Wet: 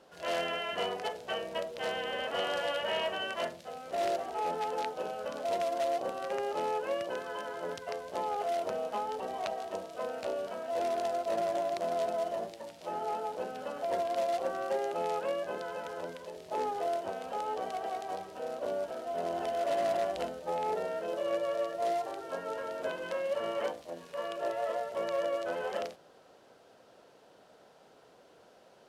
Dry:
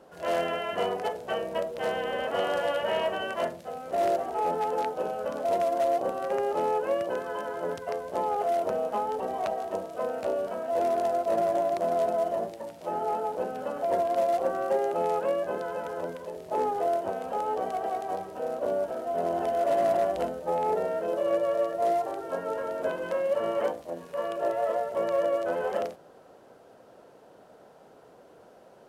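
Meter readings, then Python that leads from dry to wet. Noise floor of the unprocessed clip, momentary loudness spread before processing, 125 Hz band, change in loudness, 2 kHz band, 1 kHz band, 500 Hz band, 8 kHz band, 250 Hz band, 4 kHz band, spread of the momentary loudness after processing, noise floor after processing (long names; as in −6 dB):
−54 dBFS, 7 LU, −7.0 dB, −5.5 dB, −1.5 dB, −5.5 dB, −6.0 dB, can't be measured, −6.5 dB, +2.0 dB, 7 LU, −60 dBFS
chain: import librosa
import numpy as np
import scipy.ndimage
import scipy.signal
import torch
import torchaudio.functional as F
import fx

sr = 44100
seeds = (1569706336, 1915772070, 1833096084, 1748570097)

y = fx.peak_eq(x, sr, hz=4000.0, db=10.0, octaves=2.4)
y = F.gain(torch.from_numpy(y), -7.0).numpy()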